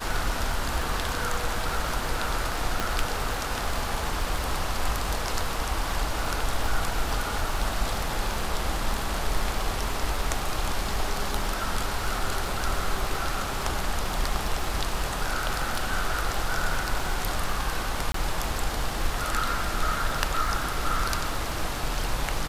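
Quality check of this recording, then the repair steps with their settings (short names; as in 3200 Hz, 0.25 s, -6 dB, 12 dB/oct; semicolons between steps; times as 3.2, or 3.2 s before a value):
crackle 49/s -32 dBFS
2.8 pop
18.12–18.14 gap 23 ms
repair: de-click; interpolate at 18.12, 23 ms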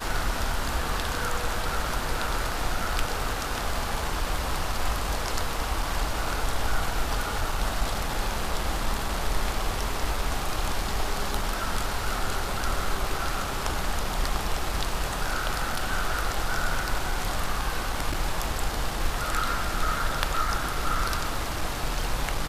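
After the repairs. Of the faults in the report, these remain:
none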